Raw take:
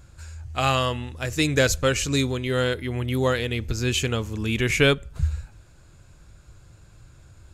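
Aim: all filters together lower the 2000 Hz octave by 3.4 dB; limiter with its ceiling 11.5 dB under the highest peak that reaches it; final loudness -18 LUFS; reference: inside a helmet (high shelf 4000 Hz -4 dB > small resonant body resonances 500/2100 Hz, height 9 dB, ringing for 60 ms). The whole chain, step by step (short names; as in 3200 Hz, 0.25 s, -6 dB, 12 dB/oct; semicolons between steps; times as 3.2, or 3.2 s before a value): bell 2000 Hz -3.5 dB; limiter -17.5 dBFS; high shelf 4000 Hz -4 dB; small resonant body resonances 500/2100 Hz, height 9 dB, ringing for 60 ms; gain +8.5 dB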